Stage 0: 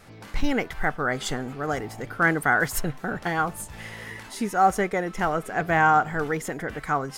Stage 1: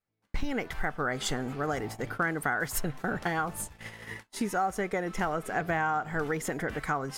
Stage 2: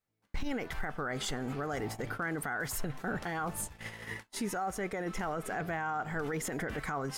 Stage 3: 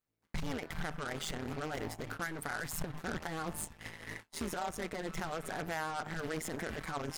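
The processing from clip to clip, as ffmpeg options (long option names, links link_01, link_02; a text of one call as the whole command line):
ffmpeg -i in.wav -af "agate=range=-39dB:threshold=-37dB:ratio=16:detection=peak,acompressor=threshold=-26dB:ratio=6" out.wav
ffmpeg -i in.wav -af "alimiter=level_in=2.5dB:limit=-24dB:level=0:latency=1:release=14,volume=-2.5dB" out.wav
ffmpeg -i in.wav -af "aeval=exprs='0.0501*(cos(1*acos(clip(val(0)/0.0501,-1,1)))-cos(1*PI/2))+0.00891*(cos(6*acos(clip(val(0)/0.0501,-1,1)))-cos(6*PI/2))+0.01*(cos(8*acos(clip(val(0)/0.0501,-1,1)))-cos(8*PI/2))':channel_layout=same,tremolo=f=160:d=0.857" out.wav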